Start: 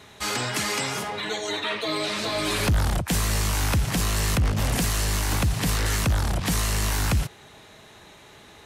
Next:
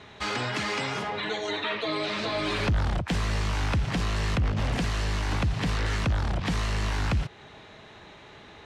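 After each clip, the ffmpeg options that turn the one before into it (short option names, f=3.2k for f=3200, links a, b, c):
-filter_complex "[0:a]lowpass=3.9k,asplit=2[a][b];[b]acompressor=threshold=-30dB:ratio=6,volume=2dB[c];[a][c]amix=inputs=2:normalize=0,volume=-6dB"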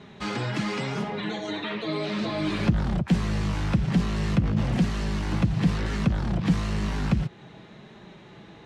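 -af "equalizer=f=190:t=o:w=2:g=12,flanger=delay=5:depth=1.2:regen=-43:speed=1:shape=triangular"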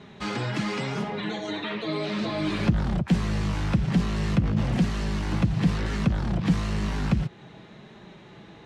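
-af anull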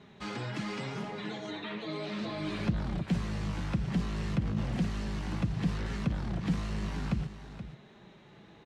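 -af "aecho=1:1:477:0.266,volume=-8dB"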